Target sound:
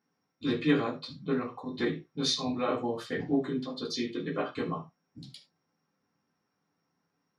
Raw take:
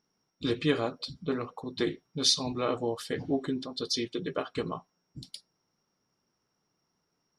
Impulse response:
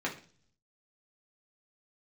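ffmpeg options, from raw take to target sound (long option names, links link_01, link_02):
-filter_complex "[0:a]equalizer=frequency=350:width_type=o:width=0.54:gain=-4.5[link_01];[1:a]atrim=start_sample=2205,afade=type=out:start_time=0.16:duration=0.01,atrim=end_sample=7497[link_02];[link_01][link_02]afir=irnorm=-1:irlink=0,volume=-5dB"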